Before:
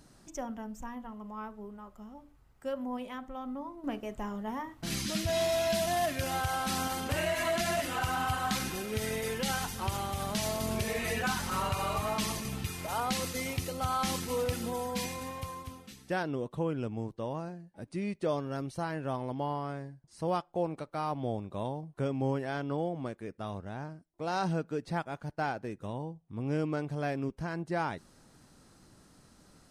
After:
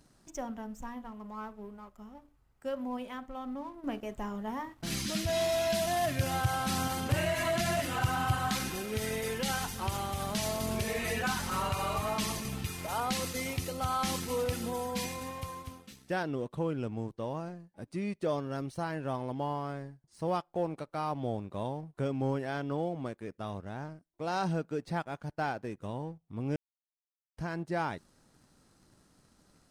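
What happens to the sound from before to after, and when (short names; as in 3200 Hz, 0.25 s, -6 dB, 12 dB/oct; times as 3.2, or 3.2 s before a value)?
6.04–8.49 bell 120 Hz +12.5 dB
26.56–27.37 mute
whole clip: sample leveller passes 1; gain -4 dB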